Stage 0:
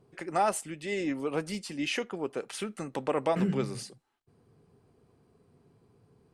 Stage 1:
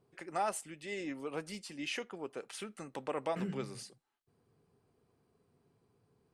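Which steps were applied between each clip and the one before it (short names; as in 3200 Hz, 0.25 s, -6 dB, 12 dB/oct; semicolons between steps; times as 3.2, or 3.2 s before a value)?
low shelf 500 Hz -4.5 dB; gain -6 dB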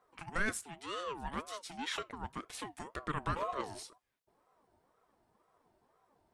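ring modulator with a swept carrier 690 Hz, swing 30%, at 2 Hz; gain +3 dB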